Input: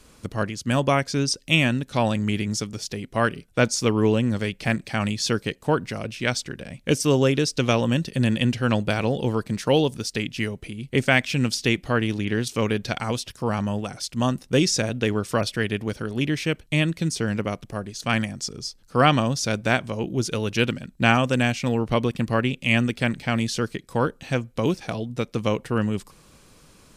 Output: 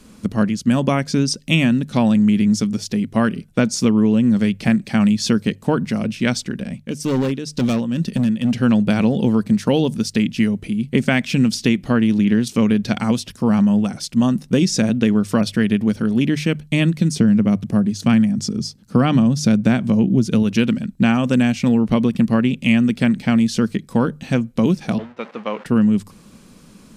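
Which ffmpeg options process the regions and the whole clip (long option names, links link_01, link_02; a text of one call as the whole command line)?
ffmpeg -i in.wav -filter_complex "[0:a]asettb=1/sr,asplit=3[link_01][link_02][link_03];[link_01]atrim=end=6.694[link_04];[link_02]atrim=start=6.69:end=8.62,asetpts=PTS-STARTPTS,afade=type=in:duration=0.004:curve=qsin,afade=type=out:start_time=1.926:duration=0.004:curve=qsin,tremolo=f=2.1:d=0.77,volume=22.5dB,asoftclip=hard,volume=-22.5dB[link_05];[link_03]atrim=start=8.616[link_06];[link_04][link_05]acrossfade=duration=0.004:curve1=hsin:curve2=qsin[link_07];[link_07][link_06]acrossfade=duration=0.004:curve1=qsin:curve2=hsin,asettb=1/sr,asplit=3[link_08][link_09][link_10];[link_08]atrim=end=17.164[link_11];[link_09]atrim=start=17.16:end=20.43,asetpts=PTS-STARTPTS,afade=type=in:duration=0.004:curve=qsin,afade=type=out:start_time=3.266:duration=0.004:curve=qsin,highpass=84,lowshelf=frequency=250:gain=10[link_12];[link_10]atrim=start=20.426[link_13];[link_11][link_12]acrossfade=duration=0.004:curve1=hsin:curve2=qsin[link_14];[link_14][link_13]acrossfade=duration=0.004:curve1=qsin:curve2=hsin,asettb=1/sr,asplit=3[link_15][link_16][link_17];[link_15]atrim=end=24.984[link_18];[link_16]atrim=start=24.98:end=25.66,asetpts=PTS-STARTPTS,afade=type=in:duration=0.004:curve=qsin,afade=type=out:start_time=0.676:duration=0.004:curve=qsin,aeval=exprs='val(0)+0.5*0.0282*sgn(val(0))':channel_layout=same,highpass=690,lowpass=2200,agate=range=-33dB:threshold=-41dB:ratio=3:release=100:detection=peak[link_19];[link_17]atrim=start=25.656[link_20];[link_18][link_19]acrossfade=duration=0.004:curve1=hsin:curve2=qsin[link_21];[link_21][link_20]acrossfade=duration=0.004:curve1=qsin:curve2=hsin,equalizer=frequency=210:width=1.8:gain=14,bandreject=frequency=50:width_type=h:width=6,bandreject=frequency=100:width_type=h:width=6,bandreject=frequency=150:width_type=h:width=6,acompressor=threshold=-14dB:ratio=6,volume=2.5dB" out.wav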